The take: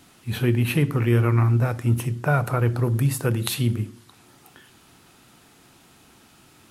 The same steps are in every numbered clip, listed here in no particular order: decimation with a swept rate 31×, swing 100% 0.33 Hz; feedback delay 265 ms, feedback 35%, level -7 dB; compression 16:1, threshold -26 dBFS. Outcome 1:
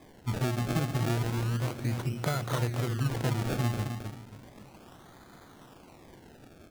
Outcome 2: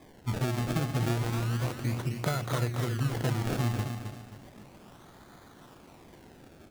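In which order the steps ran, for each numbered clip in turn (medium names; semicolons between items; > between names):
compression > feedback delay > decimation with a swept rate; decimation with a swept rate > compression > feedback delay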